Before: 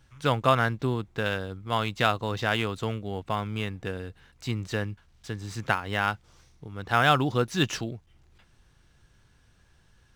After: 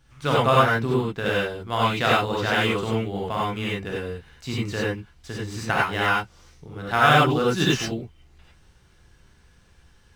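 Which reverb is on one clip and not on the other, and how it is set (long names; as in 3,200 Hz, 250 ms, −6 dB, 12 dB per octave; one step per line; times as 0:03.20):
reverb whose tail is shaped and stops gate 120 ms rising, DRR −5.5 dB
level −1 dB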